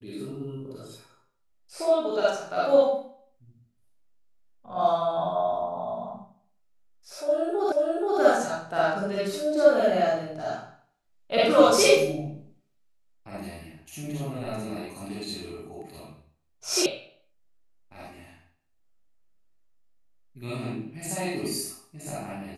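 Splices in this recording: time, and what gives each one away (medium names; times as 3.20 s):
7.72 s: repeat of the last 0.48 s
16.86 s: sound stops dead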